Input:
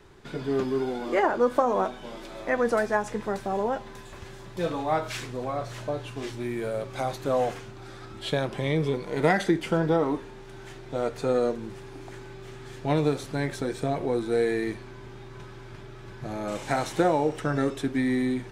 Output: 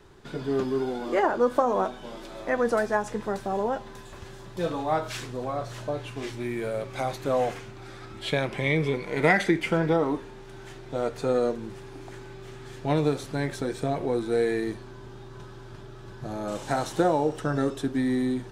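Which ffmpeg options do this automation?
ffmpeg -i in.wav -af "asetnsamples=nb_out_samples=441:pad=0,asendcmd='5.95 equalizer g 3;8.28 equalizer g 9.5;9.93 equalizer g -1.5;14.6 equalizer g -8.5',equalizer=frequency=2200:width_type=o:width=0.46:gain=-3.5" out.wav

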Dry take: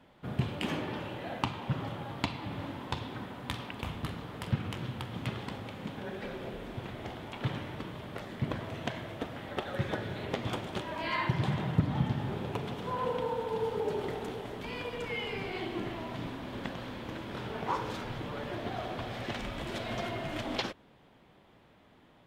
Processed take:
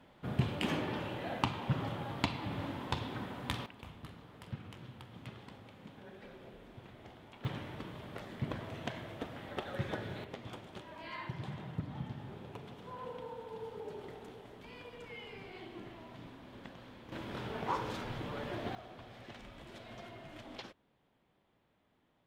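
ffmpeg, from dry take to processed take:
ffmpeg -i in.wav -af "asetnsamples=nb_out_samples=441:pad=0,asendcmd='3.66 volume volume -12.5dB;7.45 volume volume -4.5dB;10.24 volume volume -12dB;17.12 volume volume -2.5dB;18.75 volume volume -14dB',volume=-0.5dB" out.wav

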